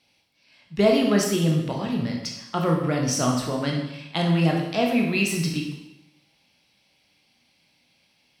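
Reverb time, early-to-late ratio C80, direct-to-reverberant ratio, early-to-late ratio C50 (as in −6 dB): 0.90 s, 6.5 dB, −0.5 dB, 4.0 dB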